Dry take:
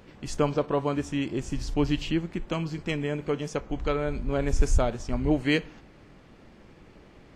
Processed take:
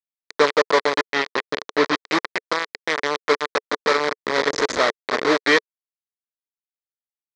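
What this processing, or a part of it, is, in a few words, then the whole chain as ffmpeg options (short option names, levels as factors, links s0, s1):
hand-held game console: -filter_complex "[0:a]acrusher=bits=3:mix=0:aa=0.000001,highpass=440,equalizer=f=440:t=q:w=4:g=5,equalizer=f=750:t=q:w=4:g=-6,equalizer=f=1100:t=q:w=4:g=4,equalizer=f=1900:t=q:w=4:g=6,equalizer=f=2800:t=q:w=4:g=-9,equalizer=f=4000:t=q:w=4:g=3,lowpass=f=5300:w=0.5412,lowpass=f=5300:w=1.3066,asettb=1/sr,asplit=3[s0][s1][s2];[s0]atrim=end=1.034[s3];[s1]atrim=start=1.03:end=2.09,asetpts=PTS-STARTPTS,afade=t=in:d=0.004:c=qsin,afade=t=out:st=1.056:d=0.004:c=qsin,lowpass=5600[s4];[s2]atrim=start=2.086[s5];[s3][s4]acrossfade=d=0.004:c1=hsin:c2=qsin[s6];[s6][s5]acrossfade=d=0.004:c1=qsin:c2=hsin,volume=2.37"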